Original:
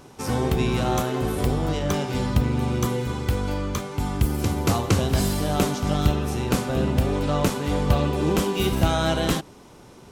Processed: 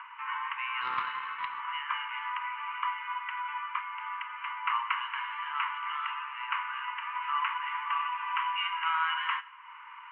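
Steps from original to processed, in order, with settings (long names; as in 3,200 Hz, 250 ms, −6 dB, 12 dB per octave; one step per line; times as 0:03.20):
Chebyshev low-pass with heavy ripple 3,000 Hz, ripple 6 dB
parametric band 1,300 Hz +10.5 dB 2.7 octaves
upward compression, threshold −29 dBFS
Chebyshev high-pass filter 940 Hz, order 8
convolution reverb RT60 1.5 s, pre-delay 7 ms, DRR 15 dB
0:00.81–0:01.60: highs frequency-modulated by the lows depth 0.25 ms
level −3.5 dB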